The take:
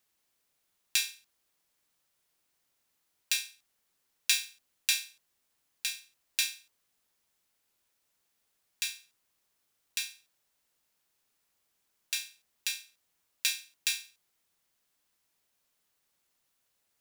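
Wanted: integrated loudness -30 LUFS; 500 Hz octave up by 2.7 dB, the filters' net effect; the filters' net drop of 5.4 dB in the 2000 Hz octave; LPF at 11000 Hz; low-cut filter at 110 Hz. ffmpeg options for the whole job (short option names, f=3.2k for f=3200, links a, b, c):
-af "highpass=110,lowpass=11k,equalizer=f=500:t=o:g=3.5,equalizer=f=2k:t=o:g=-8,volume=5dB"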